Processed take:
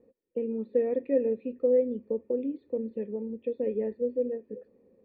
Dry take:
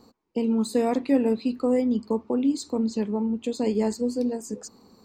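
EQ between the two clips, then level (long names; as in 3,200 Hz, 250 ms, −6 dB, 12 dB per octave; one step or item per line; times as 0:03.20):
formant resonators in series e
flat-topped bell 1,200 Hz −9 dB 2.3 octaves
+7.5 dB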